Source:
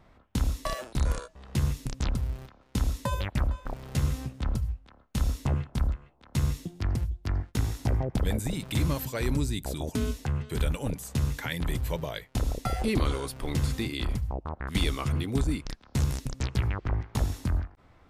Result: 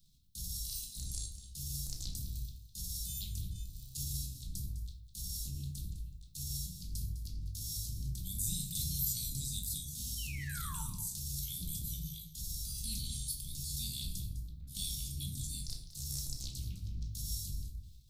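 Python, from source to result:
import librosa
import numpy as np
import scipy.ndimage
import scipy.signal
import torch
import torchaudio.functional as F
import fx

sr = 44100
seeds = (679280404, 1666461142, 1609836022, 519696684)

y = scipy.signal.sosfilt(scipy.signal.ellip(3, 1.0, 40, [170.0, 4000.0], 'bandstop', fs=sr, output='sos'), x)
y = librosa.effects.preemphasis(y, coef=0.9, zi=[0.0])
y = fx.level_steps(y, sr, step_db=10)
y = fx.transient(y, sr, attack_db=-7, sustain_db=6)
y = fx.spec_paint(y, sr, seeds[0], shape='fall', start_s=10.17, length_s=0.65, low_hz=860.0, high_hz=3200.0, level_db=-59.0)
y = y + 10.0 ** (-13.5 / 20.0) * np.pad(y, (int(205 * sr / 1000.0), 0))[:len(y)]
y = fx.room_shoebox(y, sr, seeds[1], volume_m3=470.0, walls='furnished', distance_m=2.3)
y = y * 10.0 ** (8.0 / 20.0)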